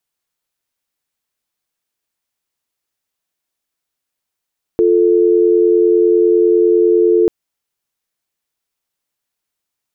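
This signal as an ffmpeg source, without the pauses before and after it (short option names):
-f lavfi -i "aevalsrc='0.282*(sin(2*PI*350*t)+sin(2*PI*440*t))':d=2.49:s=44100"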